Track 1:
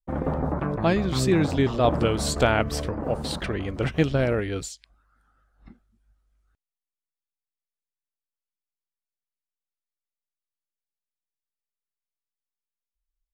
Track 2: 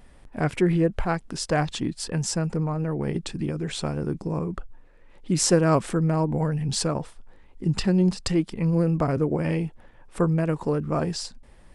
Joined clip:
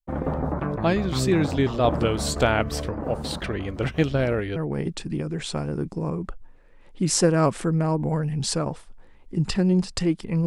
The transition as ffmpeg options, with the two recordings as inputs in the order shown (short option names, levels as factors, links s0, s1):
-filter_complex "[0:a]apad=whole_dur=10.46,atrim=end=10.46,atrim=end=4.562[s0];[1:a]atrim=start=2.848:end=8.75[s1];[s0][s1]acrossfade=d=0.004:c1=hsin:c2=hsin"